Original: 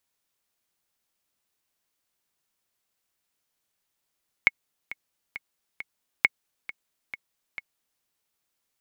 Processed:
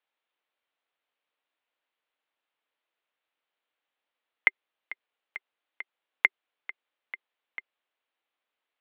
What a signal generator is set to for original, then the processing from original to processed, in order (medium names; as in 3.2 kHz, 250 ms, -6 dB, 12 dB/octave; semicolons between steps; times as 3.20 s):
metronome 135 bpm, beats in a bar 4, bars 2, 2.19 kHz, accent 17.5 dB -4 dBFS
band-stop 480 Hz, Q 12; mistuned SSB -97 Hz 440–3600 Hz